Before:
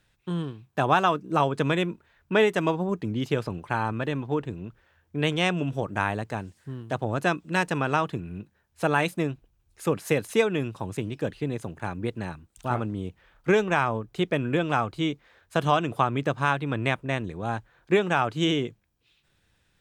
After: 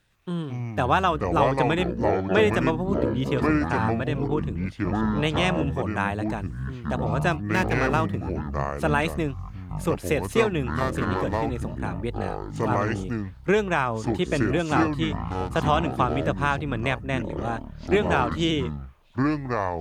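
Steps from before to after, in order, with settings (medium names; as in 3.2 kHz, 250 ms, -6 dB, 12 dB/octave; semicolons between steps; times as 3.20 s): 7.31–8.19 s: median filter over 9 samples; ever faster or slower copies 110 ms, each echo -6 st, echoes 3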